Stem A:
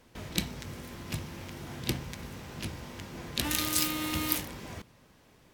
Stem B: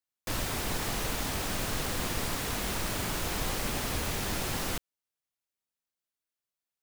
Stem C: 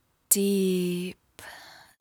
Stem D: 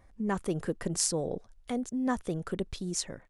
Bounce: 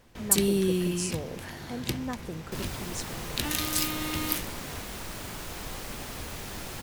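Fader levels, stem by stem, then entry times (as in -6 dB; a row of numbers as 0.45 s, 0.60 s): 0.0 dB, -6.0 dB, -1.0 dB, -5.5 dB; 0.00 s, 2.25 s, 0.00 s, 0.00 s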